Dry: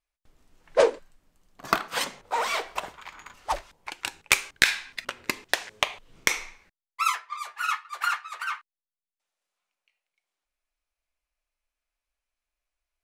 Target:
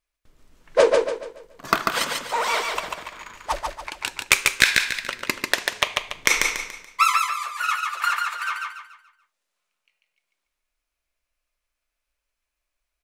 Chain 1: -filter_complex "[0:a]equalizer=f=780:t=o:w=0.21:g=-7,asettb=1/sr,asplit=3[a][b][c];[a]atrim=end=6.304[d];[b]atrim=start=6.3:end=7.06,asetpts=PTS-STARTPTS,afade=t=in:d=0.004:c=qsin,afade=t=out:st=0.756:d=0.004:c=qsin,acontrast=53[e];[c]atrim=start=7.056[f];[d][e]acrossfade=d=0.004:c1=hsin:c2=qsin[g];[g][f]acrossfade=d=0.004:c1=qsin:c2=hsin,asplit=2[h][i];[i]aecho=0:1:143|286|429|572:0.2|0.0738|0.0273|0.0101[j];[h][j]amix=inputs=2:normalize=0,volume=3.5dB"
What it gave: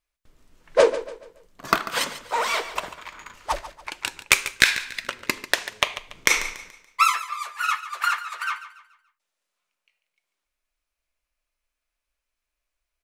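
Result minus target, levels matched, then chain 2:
echo-to-direct -10.5 dB
-filter_complex "[0:a]equalizer=f=780:t=o:w=0.21:g=-7,asettb=1/sr,asplit=3[a][b][c];[a]atrim=end=6.304[d];[b]atrim=start=6.3:end=7.06,asetpts=PTS-STARTPTS,afade=t=in:d=0.004:c=qsin,afade=t=out:st=0.756:d=0.004:c=qsin,acontrast=53[e];[c]atrim=start=7.056[f];[d][e]acrossfade=d=0.004:c1=hsin:c2=qsin[g];[g][f]acrossfade=d=0.004:c1=qsin:c2=hsin,asplit=2[h][i];[i]aecho=0:1:143|286|429|572|715:0.668|0.247|0.0915|0.0339|0.0125[j];[h][j]amix=inputs=2:normalize=0,volume=3.5dB"

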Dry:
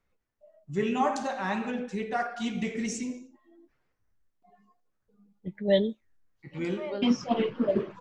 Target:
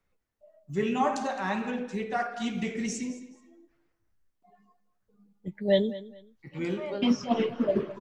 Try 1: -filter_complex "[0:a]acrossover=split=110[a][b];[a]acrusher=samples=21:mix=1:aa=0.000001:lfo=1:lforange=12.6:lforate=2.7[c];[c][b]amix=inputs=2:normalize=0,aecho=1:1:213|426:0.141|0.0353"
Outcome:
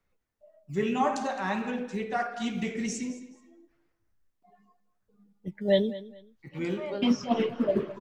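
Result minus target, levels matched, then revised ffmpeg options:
decimation with a swept rate: distortion +9 dB
-filter_complex "[0:a]acrossover=split=110[a][b];[a]acrusher=samples=8:mix=1:aa=0.000001:lfo=1:lforange=4.8:lforate=2.7[c];[c][b]amix=inputs=2:normalize=0,aecho=1:1:213|426:0.141|0.0353"

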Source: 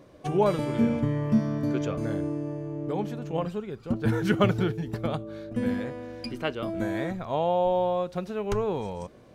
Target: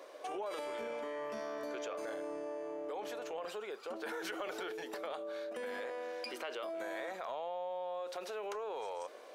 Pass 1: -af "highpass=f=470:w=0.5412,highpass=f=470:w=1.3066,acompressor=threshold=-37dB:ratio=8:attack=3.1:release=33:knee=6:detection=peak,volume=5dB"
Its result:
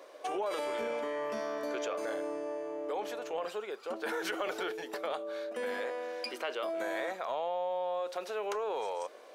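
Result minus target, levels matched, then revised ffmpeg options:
compressor: peak gain reduction -6 dB
-af "highpass=f=470:w=0.5412,highpass=f=470:w=1.3066,acompressor=threshold=-44dB:ratio=8:attack=3.1:release=33:knee=6:detection=peak,volume=5dB"

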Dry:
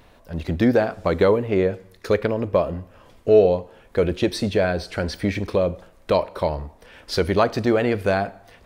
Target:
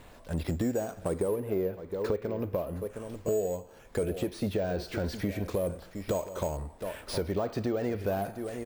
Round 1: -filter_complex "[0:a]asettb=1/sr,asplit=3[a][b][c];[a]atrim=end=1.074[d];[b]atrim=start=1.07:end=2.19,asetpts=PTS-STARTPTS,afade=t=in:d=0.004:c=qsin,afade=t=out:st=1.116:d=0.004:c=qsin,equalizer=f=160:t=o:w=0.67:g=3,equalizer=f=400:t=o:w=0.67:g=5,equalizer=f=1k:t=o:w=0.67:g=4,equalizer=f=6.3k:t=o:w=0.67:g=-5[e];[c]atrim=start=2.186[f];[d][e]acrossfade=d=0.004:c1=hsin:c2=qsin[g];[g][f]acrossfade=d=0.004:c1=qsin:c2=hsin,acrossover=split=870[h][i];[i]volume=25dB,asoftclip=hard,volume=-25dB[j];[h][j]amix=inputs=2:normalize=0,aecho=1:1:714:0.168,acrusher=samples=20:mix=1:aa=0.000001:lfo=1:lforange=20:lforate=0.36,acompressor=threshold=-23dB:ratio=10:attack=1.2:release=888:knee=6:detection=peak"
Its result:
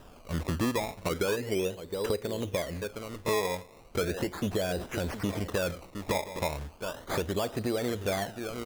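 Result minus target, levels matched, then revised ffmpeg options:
decimation with a swept rate: distortion +16 dB; overloaded stage: distortion -7 dB
-filter_complex "[0:a]asettb=1/sr,asplit=3[a][b][c];[a]atrim=end=1.074[d];[b]atrim=start=1.07:end=2.19,asetpts=PTS-STARTPTS,afade=t=in:d=0.004:c=qsin,afade=t=out:st=1.116:d=0.004:c=qsin,equalizer=f=160:t=o:w=0.67:g=3,equalizer=f=400:t=o:w=0.67:g=5,equalizer=f=1k:t=o:w=0.67:g=4,equalizer=f=6.3k:t=o:w=0.67:g=-5[e];[c]atrim=start=2.186[f];[d][e]acrossfade=d=0.004:c1=hsin:c2=qsin[g];[g][f]acrossfade=d=0.004:c1=qsin:c2=hsin,acrossover=split=870[h][i];[i]volume=36dB,asoftclip=hard,volume=-36dB[j];[h][j]amix=inputs=2:normalize=0,aecho=1:1:714:0.168,acrusher=samples=4:mix=1:aa=0.000001:lfo=1:lforange=4:lforate=0.36,acompressor=threshold=-23dB:ratio=10:attack=1.2:release=888:knee=6:detection=peak"

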